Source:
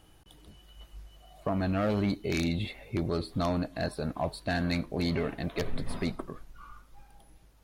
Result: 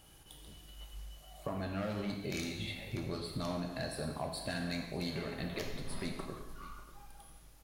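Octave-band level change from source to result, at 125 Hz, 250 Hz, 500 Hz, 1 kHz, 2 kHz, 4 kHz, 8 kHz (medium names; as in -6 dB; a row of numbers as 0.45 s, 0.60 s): -8.0 dB, -8.5 dB, -8.0 dB, -7.5 dB, -5.5 dB, -2.5 dB, +0.5 dB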